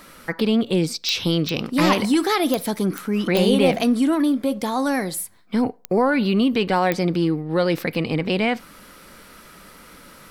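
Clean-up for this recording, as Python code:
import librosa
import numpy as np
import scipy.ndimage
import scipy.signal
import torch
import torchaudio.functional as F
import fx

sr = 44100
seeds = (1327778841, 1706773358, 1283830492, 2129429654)

y = fx.fix_declick_ar(x, sr, threshold=10.0)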